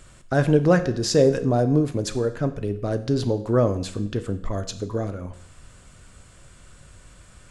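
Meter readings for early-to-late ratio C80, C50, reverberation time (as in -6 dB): 16.5 dB, 13.5 dB, 0.65 s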